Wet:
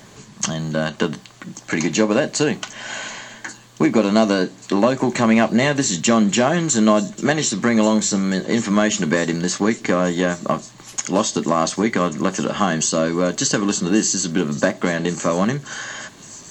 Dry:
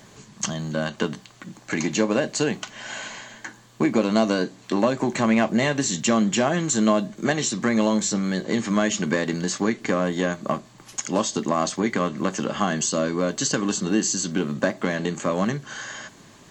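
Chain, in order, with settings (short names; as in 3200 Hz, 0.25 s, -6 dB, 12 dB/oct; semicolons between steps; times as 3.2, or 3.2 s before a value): thin delay 1.136 s, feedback 63%, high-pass 4800 Hz, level -14 dB; gain +4.5 dB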